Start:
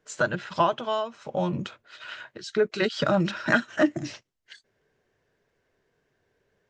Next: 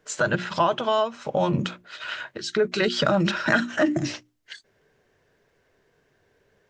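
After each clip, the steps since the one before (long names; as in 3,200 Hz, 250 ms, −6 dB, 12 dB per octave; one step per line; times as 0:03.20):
mains-hum notches 60/120/180/240/300/360 Hz
in parallel at −2 dB: compressor whose output falls as the input rises −27 dBFS, ratio −0.5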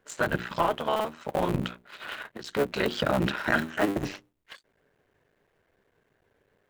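sub-harmonics by changed cycles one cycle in 3, muted
parametric band 5,600 Hz −7.5 dB 0.9 octaves
level −2.5 dB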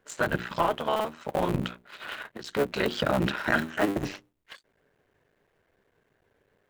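no processing that can be heard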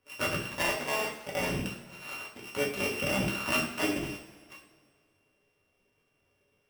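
samples sorted by size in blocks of 16 samples
coupled-rooms reverb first 0.47 s, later 2.1 s, from −18 dB, DRR −3.5 dB
level −9 dB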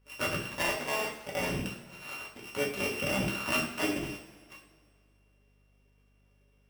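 mains hum 50 Hz, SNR 31 dB
level −1 dB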